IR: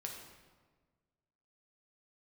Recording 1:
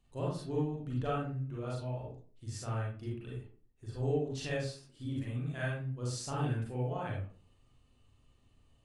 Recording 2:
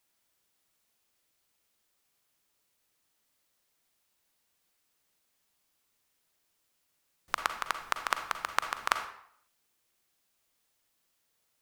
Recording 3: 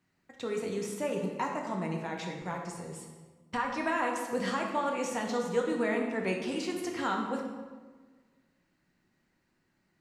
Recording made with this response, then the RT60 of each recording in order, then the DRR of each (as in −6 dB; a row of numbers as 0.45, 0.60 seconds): 3; 0.40, 0.65, 1.5 seconds; −5.5, 7.0, 0.0 decibels